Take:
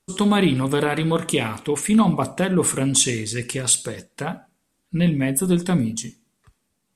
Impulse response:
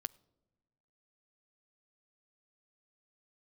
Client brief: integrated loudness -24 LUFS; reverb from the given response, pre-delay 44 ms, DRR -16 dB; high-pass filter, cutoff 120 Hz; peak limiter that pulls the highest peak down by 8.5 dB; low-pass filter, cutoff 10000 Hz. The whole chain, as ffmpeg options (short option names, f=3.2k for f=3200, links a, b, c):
-filter_complex "[0:a]highpass=120,lowpass=10k,alimiter=limit=-13dB:level=0:latency=1,asplit=2[a][b];[1:a]atrim=start_sample=2205,adelay=44[c];[b][c]afir=irnorm=-1:irlink=0,volume=18.5dB[d];[a][d]amix=inputs=2:normalize=0,volume=-16dB"